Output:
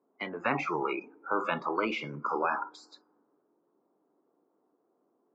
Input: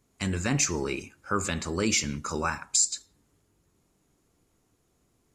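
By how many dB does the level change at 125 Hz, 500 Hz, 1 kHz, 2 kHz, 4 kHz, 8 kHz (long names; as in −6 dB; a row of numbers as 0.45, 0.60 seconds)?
−13.0 dB, −0.5 dB, +3.5 dB, −1.5 dB, −12.0 dB, below −35 dB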